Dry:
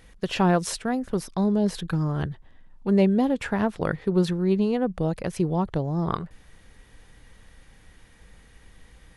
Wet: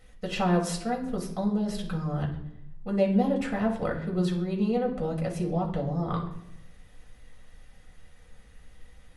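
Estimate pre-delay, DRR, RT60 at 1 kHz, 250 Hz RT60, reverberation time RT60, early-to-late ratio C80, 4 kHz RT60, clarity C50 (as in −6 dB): 4 ms, −1.0 dB, 0.70 s, 1.0 s, 0.80 s, 12.5 dB, 0.50 s, 8.5 dB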